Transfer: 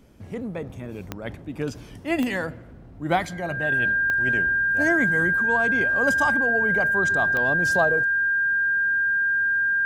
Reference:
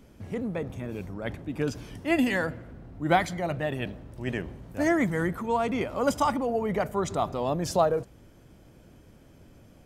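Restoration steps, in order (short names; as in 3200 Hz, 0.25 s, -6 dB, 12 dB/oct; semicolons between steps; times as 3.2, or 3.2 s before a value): de-click; notch 1600 Hz, Q 30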